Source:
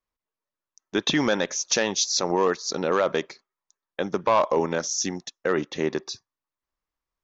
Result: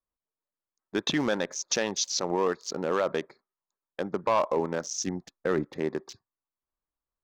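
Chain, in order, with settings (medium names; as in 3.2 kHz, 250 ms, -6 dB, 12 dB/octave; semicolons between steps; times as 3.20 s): local Wiener filter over 15 samples; 5.07–5.75 s: bass shelf 170 Hz +9.5 dB; trim -4 dB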